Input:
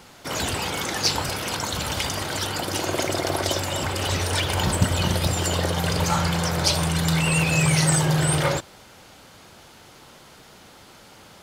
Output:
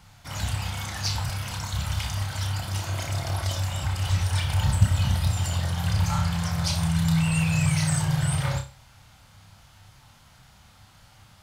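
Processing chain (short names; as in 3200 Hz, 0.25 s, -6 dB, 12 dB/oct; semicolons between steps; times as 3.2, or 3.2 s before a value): EQ curve 110 Hz 0 dB, 400 Hz -26 dB, 760 Hz -12 dB; on a send: flutter echo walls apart 5.2 m, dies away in 0.31 s; on the sum: gain +3.5 dB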